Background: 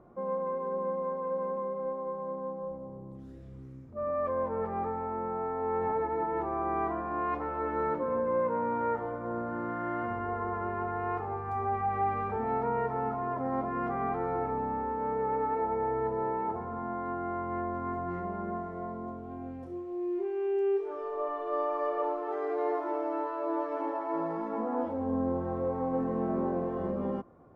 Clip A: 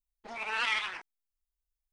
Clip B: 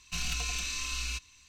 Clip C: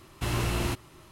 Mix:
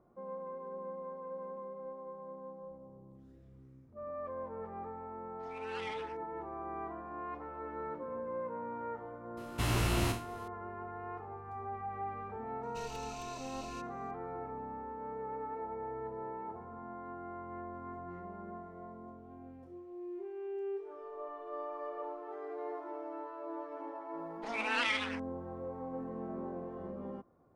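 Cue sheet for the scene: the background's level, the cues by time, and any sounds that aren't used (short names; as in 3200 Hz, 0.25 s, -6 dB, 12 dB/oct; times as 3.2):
background -10.5 dB
5.15 add A -15 dB
9.37 add C -3.5 dB + spectral trails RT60 0.39 s
12.63 add B -16.5 dB
24.18 add A -0.5 dB + vocal rider within 4 dB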